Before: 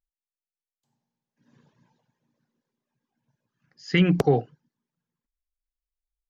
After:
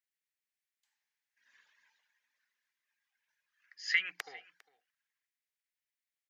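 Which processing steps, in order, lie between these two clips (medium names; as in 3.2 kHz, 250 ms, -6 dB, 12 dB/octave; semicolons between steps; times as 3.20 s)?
compression 12:1, threshold -27 dBFS, peak gain reduction 13.5 dB; resonant high-pass 1.9 kHz, resonance Q 3.1; delay 402 ms -22 dB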